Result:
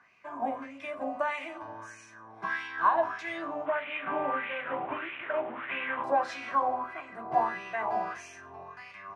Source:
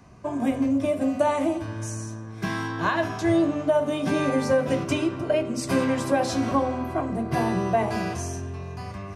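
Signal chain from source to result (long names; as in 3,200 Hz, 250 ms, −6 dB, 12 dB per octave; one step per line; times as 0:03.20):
0:03.66–0:06.04: linear delta modulator 16 kbit/s, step −28.5 dBFS
LFO wah 1.6 Hz 780–2,500 Hz, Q 4.2
level +6 dB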